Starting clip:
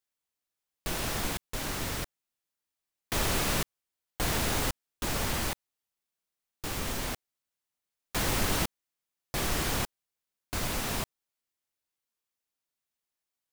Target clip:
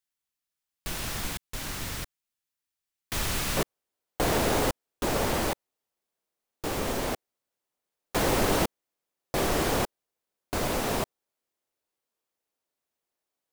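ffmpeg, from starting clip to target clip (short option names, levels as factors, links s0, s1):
-af "asetnsamples=n=441:p=0,asendcmd='3.57 equalizer g 10',equalizer=f=490:t=o:w=2.2:g=-5"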